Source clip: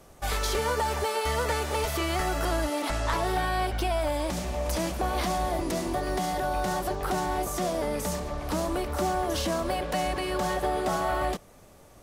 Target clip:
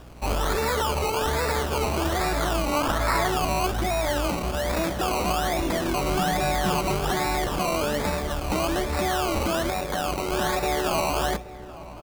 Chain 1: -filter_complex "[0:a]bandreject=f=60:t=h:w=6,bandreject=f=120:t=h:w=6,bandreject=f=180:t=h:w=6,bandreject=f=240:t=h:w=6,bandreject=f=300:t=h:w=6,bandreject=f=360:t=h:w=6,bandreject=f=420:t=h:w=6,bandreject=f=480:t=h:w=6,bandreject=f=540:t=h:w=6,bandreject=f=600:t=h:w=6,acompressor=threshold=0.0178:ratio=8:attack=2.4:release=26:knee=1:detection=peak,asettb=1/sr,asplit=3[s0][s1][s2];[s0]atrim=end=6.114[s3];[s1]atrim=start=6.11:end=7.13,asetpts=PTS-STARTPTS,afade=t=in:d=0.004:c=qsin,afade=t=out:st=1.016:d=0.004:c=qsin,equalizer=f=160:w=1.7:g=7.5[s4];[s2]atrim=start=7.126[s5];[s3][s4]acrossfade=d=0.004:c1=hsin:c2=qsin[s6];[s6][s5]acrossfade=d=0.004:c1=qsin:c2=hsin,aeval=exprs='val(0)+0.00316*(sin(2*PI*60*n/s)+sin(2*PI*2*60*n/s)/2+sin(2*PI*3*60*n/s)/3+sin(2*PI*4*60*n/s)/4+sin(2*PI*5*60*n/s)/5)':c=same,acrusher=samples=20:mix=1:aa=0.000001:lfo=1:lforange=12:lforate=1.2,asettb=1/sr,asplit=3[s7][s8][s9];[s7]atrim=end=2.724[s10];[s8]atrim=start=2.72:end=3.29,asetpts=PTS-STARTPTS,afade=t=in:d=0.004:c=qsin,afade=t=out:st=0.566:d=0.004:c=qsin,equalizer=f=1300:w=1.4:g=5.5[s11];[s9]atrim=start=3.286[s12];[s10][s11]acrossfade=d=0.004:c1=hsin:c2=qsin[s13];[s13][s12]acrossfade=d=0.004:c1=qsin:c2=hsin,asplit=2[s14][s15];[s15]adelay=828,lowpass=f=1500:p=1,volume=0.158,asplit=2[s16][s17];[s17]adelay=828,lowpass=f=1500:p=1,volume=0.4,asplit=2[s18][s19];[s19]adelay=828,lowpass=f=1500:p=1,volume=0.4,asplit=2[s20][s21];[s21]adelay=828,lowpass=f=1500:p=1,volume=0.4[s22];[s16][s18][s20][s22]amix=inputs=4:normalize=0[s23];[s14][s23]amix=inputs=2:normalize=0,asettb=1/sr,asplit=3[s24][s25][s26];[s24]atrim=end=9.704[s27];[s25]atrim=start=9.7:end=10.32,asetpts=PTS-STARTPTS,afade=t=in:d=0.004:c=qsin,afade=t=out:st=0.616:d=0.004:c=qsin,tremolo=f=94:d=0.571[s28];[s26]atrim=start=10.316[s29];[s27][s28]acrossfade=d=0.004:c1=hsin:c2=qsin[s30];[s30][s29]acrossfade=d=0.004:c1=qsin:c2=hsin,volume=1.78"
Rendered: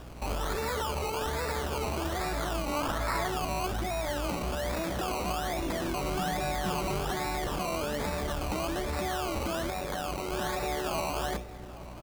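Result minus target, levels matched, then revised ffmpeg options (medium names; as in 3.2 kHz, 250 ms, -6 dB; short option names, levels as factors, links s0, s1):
compression: peak gain reduction +7.5 dB
-filter_complex "[0:a]bandreject=f=60:t=h:w=6,bandreject=f=120:t=h:w=6,bandreject=f=180:t=h:w=6,bandreject=f=240:t=h:w=6,bandreject=f=300:t=h:w=6,bandreject=f=360:t=h:w=6,bandreject=f=420:t=h:w=6,bandreject=f=480:t=h:w=6,bandreject=f=540:t=h:w=6,bandreject=f=600:t=h:w=6,acompressor=threshold=0.0473:ratio=8:attack=2.4:release=26:knee=1:detection=peak,asettb=1/sr,asplit=3[s0][s1][s2];[s0]atrim=end=6.114[s3];[s1]atrim=start=6.11:end=7.13,asetpts=PTS-STARTPTS,afade=t=in:d=0.004:c=qsin,afade=t=out:st=1.016:d=0.004:c=qsin,equalizer=f=160:w=1.7:g=7.5[s4];[s2]atrim=start=7.126[s5];[s3][s4]acrossfade=d=0.004:c1=hsin:c2=qsin[s6];[s6][s5]acrossfade=d=0.004:c1=qsin:c2=hsin,aeval=exprs='val(0)+0.00316*(sin(2*PI*60*n/s)+sin(2*PI*2*60*n/s)/2+sin(2*PI*3*60*n/s)/3+sin(2*PI*4*60*n/s)/4+sin(2*PI*5*60*n/s)/5)':c=same,acrusher=samples=20:mix=1:aa=0.000001:lfo=1:lforange=12:lforate=1.2,asettb=1/sr,asplit=3[s7][s8][s9];[s7]atrim=end=2.724[s10];[s8]atrim=start=2.72:end=3.29,asetpts=PTS-STARTPTS,afade=t=in:d=0.004:c=qsin,afade=t=out:st=0.566:d=0.004:c=qsin,equalizer=f=1300:w=1.4:g=5.5[s11];[s9]atrim=start=3.286[s12];[s10][s11]acrossfade=d=0.004:c1=hsin:c2=qsin[s13];[s13][s12]acrossfade=d=0.004:c1=qsin:c2=hsin,asplit=2[s14][s15];[s15]adelay=828,lowpass=f=1500:p=1,volume=0.158,asplit=2[s16][s17];[s17]adelay=828,lowpass=f=1500:p=1,volume=0.4,asplit=2[s18][s19];[s19]adelay=828,lowpass=f=1500:p=1,volume=0.4,asplit=2[s20][s21];[s21]adelay=828,lowpass=f=1500:p=1,volume=0.4[s22];[s16][s18][s20][s22]amix=inputs=4:normalize=0[s23];[s14][s23]amix=inputs=2:normalize=0,asettb=1/sr,asplit=3[s24][s25][s26];[s24]atrim=end=9.704[s27];[s25]atrim=start=9.7:end=10.32,asetpts=PTS-STARTPTS,afade=t=in:d=0.004:c=qsin,afade=t=out:st=0.616:d=0.004:c=qsin,tremolo=f=94:d=0.571[s28];[s26]atrim=start=10.316[s29];[s27][s28]acrossfade=d=0.004:c1=hsin:c2=qsin[s30];[s30][s29]acrossfade=d=0.004:c1=qsin:c2=hsin,volume=1.78"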